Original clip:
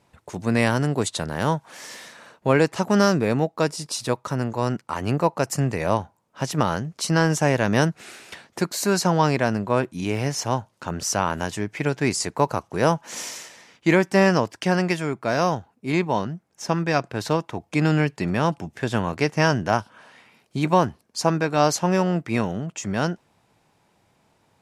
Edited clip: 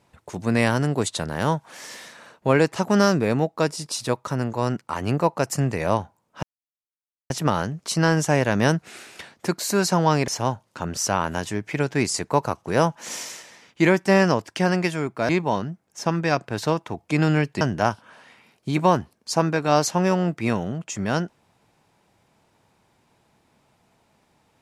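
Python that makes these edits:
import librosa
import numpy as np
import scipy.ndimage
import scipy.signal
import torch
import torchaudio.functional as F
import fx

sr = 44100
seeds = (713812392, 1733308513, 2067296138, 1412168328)

y = fx.edit(x, sr, fx.insert_silence(at_s=6.43, length_s=0.87),
    fx.cut(start_s=9.41, length_s=0.93),
    fx.cut(start_s=15.35, length_s=0.57),
    fx.cut(start_s=18.24, length_s=1.25), tone=tone)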